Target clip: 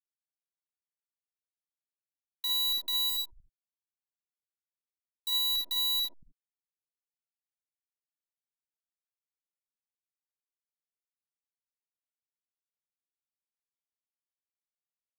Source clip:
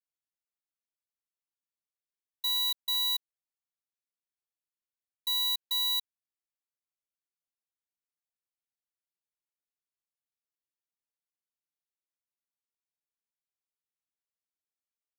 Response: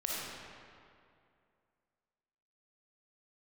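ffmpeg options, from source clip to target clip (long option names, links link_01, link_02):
-filter_complex "[0:a]asplit=3[link_01][link_02][link_03];[link_01]afade=type=out:start_time=3.08:duration=0.02[link_04];[link_02]equalizer=frequency=2000:width=1.5:gain=-13,afade=type=in:start_time=3.08:duration=0.02,afade=type=out:start_time=5.29:duration=0.02[link_05];[link_03]afade=type=in:start_time=5.29:duration=0.02[link_06];[link_04][link_05][link_06]amix=inputs=3:normalize=0,acrusher=bits=7:dc=4:mix=0:aa=0.000001,acrossover=split=190|770[link_07][link_08][link_09];[link_08]adelay=50[link_10];[link_07]adelay=230[link_11];[link_11][link_10][link_09]amix=inputs=3:normalize=0[link_12];[1:a]atrim=start_sample=2205,atrim=end_sample=3969[link_13];[link_12][link_13]afir=irnorm=-1:irlink=0"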